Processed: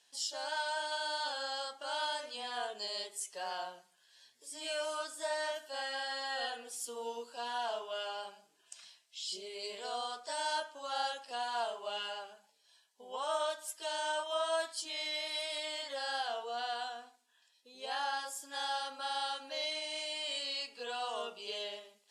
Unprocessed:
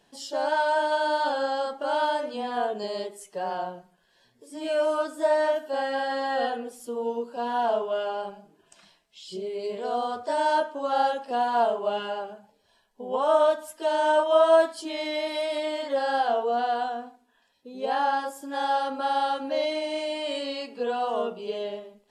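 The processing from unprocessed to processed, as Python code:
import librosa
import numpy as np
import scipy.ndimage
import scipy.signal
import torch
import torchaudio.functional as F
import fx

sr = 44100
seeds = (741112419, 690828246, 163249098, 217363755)

p1 = scipy.signal.sosfilt(scipy.signal.butter(2, 7700.0, 'lowpass', fs=sr, output='sos'), x)
p2 = np.diff(p1, prepend=0.0)
p3 = fx.rider(p2, sr, range_db=10, speed_s=0.5)
y = p2 + (p3 * 10.0 ** (0.0 / 20.0))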